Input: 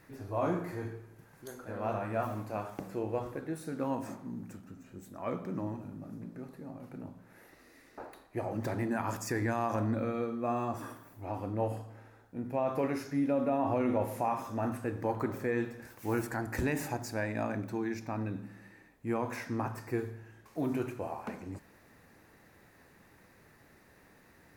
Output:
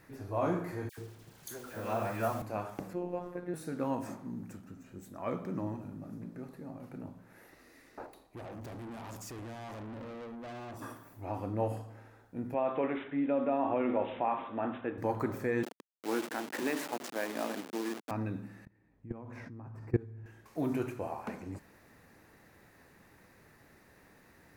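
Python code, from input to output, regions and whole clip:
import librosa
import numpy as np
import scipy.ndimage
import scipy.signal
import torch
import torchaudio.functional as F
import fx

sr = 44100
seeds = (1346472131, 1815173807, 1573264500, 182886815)

y = fx.chain(x, sr, fx.delta_hold(step_db=-54.5),
    fx.high_shelf(hz=3300.0, db=8.5),
    fx.dispersion(late='lows', ms=87.0, hz=1500.0), at=(0.89, 2.42))
y = fx.chain(y, sr, fx.high_shelf(hz=2500.0, db=-8.0),
    fx.robotise(hz=177.0),
    fx.band_squash(depth_pct=70), at=(2.93, 3.54))
y = fx.chain(y, sr, fx.peak_eq(hz=1600.0, db=-9.5, octaves=0.95),
    fx.tube_stage(drive_db=42.0, bias=0.4), at=(8.06, 10.82))
y = fx.chain(y, sr, fx.highpass(hz=220.0, slope=12),
    fx.resample_bad(factor=6, down='none', up='filtered'), at=(12.54, 14.98))
y = fx.chain(y, sr, fx.delta_hold(step_db=-34.5),
    fx.highpass(hz=240.0, slope=24), at=(15.63, 18.11))
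y = fx.chain(y, sr, fx.highpass(hz=58.0, slope=24),
    fx.riaa(side='playback'),
    fx.level_steps(step_db=23), at=(18.65, 20.26))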